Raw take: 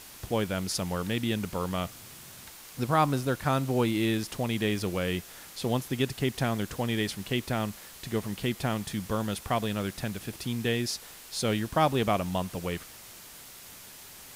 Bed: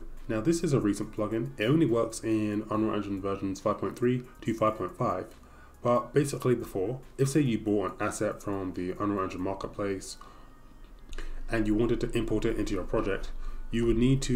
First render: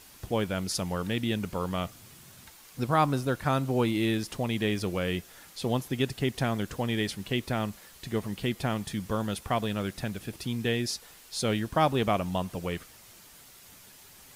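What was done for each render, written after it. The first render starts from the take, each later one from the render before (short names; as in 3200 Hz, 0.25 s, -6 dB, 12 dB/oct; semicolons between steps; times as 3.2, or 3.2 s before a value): denoiser 6 dB, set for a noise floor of -48 dBFS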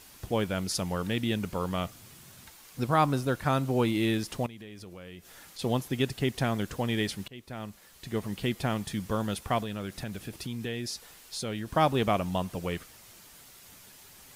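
4.46–5.59 compressor, threshold -43 dBFS; 7.28–8.34 fade in, from -22 dB; 9.62–11.71 compressor 2.5:1, threshold -33 dBFS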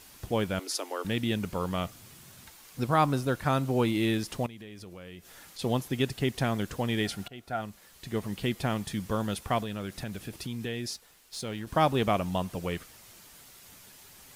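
0.59–1.05 Chebyshev high-pass 280 Hz, order 6; 7.03–7.6 small resonant body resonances 720/1400 Hz, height 12 dB -> 17 dB, ringing for 40 ms; 10.93–11.67 G.711 law mismatch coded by A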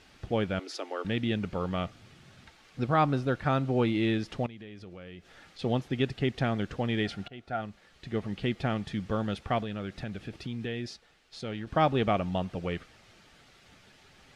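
LPF 3600 Hz 12 dB/oct; notch 1000 Hz, Q 7.1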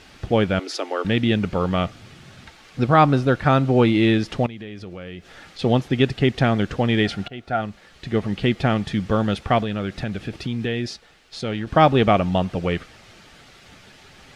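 gain +10 dB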